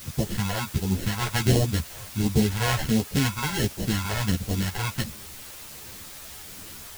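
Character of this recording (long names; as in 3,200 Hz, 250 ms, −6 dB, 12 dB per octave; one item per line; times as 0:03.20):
aliases and images of a low sample rate 1,200 Hz, jitter 0%
phaser sweep stages 2, 1.4 Hz, lowest notch 240–1,500 Hz
a quantiser's noise floor 8 bits, dither triangular
a shimmering, thickened sound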